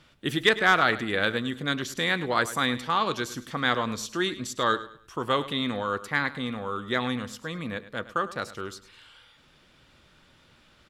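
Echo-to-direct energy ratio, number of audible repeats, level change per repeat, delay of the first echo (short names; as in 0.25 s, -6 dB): -15.0 dB, 2, -10.0 dB, 0.104 s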